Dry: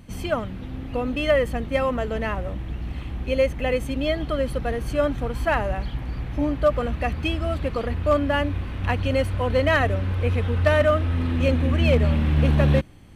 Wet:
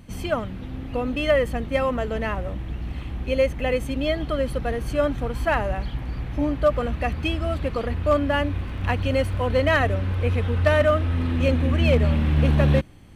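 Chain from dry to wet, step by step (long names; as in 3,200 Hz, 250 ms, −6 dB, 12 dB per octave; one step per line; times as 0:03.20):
0:08.57–0:09.46: surface crackle 27 per second → 120 per second −41 dBFS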